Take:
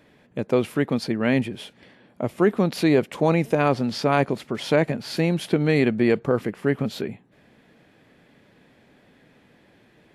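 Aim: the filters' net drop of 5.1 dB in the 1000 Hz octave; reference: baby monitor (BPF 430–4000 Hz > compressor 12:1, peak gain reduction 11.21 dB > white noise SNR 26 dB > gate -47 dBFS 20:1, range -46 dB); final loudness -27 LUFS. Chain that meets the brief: BPF 430–4000 Hz; bell 1000 Hz -7 dB; compressor 12:1, threshold -28 dBFS; white noise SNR 26 dB; gate -47 dBFS 20:1, range -46 dB; gain +8 dB

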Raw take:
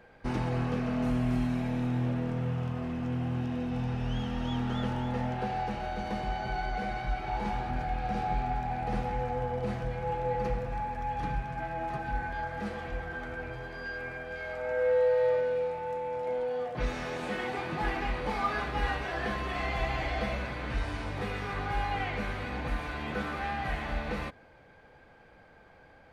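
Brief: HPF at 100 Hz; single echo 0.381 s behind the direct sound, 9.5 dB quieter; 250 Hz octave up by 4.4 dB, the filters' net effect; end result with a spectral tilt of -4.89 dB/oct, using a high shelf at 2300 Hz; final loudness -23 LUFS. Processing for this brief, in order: HPF 100 Hz; bell 250 Hz +5 dB; high shelf 2300 Hz +5 dB; echo 0.381 s -9.5 dB; gain +7.5 dB

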